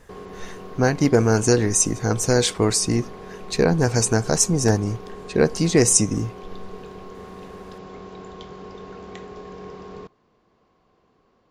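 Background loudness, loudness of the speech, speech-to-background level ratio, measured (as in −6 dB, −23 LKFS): −39.0 LKFS, −20.0 LKFS, 19.0 dB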